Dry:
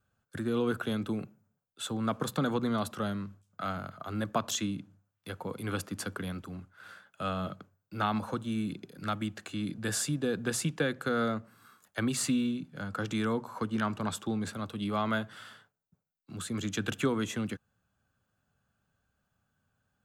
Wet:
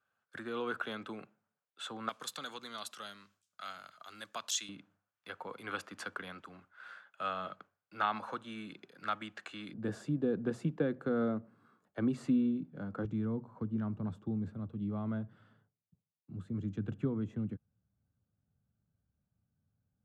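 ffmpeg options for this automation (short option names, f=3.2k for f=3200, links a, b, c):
-af "asetnsamples=n=441:p=0,asendcmd='2.09 bandpass f 5000;4.69 bandpass f 1500;9.73 bandpass f 290;13.05 bandpass f 110',bandpass=f=1.5k:t=q:w=0.67:csg=0"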